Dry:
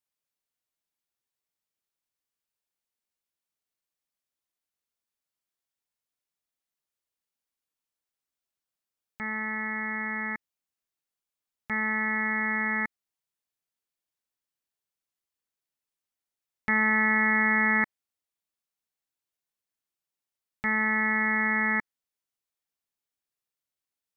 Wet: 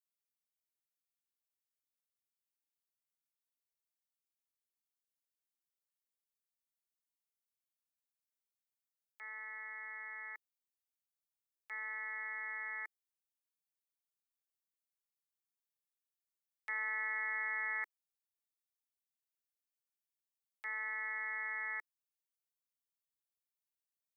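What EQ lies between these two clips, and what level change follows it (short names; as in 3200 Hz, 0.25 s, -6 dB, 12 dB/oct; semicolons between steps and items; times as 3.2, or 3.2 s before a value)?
steep high-pass 380 Hz 48 dB/oct; differentiator; high shelf 2300 Hz -10.5 dB; +2.0 dB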